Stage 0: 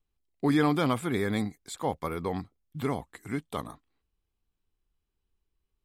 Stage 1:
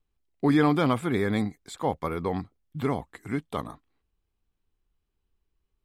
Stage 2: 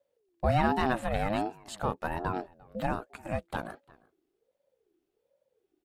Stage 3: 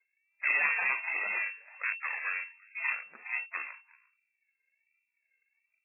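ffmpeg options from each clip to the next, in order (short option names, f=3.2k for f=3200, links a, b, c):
-af "highshelf=f=4.7k:g=-8,volume=3dB"
-filter_complex "[0:a]asplit=2[a][b];[b]acompressor=threshold=-31dB:ratio=6,volume=-2.5dB[c];[a][c]amix=inputs=2:normalize=0,asplit=2[d][e];[e]adelay=349.9,volume=-24dB,highshelf=f=4k:g=-7.87[f];[d][f]amix=inputs=2:normalize=0,aeval=exprs='val(0)*sin(2*PI*450*n/s+450*0.25/1.3*sin(2*PI*1.3*n/s))':c=same,volume=-3dB"
-af "aeval=exprs='if(lt(val(0),0),0.251*val(0),val(0))':c=same,lowpass=f=2.3k:t=q:w=0.5098,lowpass=f=2.3k:t=q:w=0.6013,lowpass=f=2.3k:t=q:w=0.9,lowpass=f=2.3k:t=q:w=2.563,afreqshift=-2700" -ar 8000 -c:a libmp3lame -b:a 8k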